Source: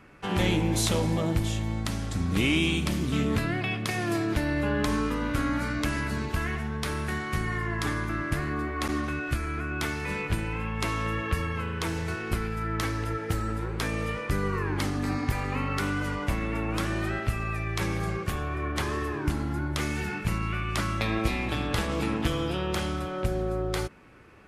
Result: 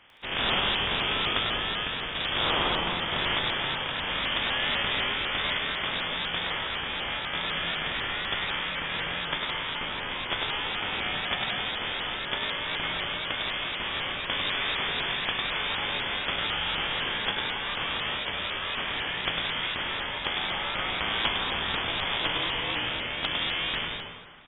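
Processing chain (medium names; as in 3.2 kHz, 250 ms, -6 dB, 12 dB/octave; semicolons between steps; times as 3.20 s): spectral contrast reduction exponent 0.3; frequency inversion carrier 3.5 kHz; on a send: bouncing-ball echo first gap 100 ms, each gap 0.7×, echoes 5; on the sum: plate-style reverb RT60 1.7 s, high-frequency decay 0.5×, pre-delay 105 ms, DRR 7.5 dB; vibrato with a chosen wave saw up 4 Hz, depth 100 cents; trim -2 dB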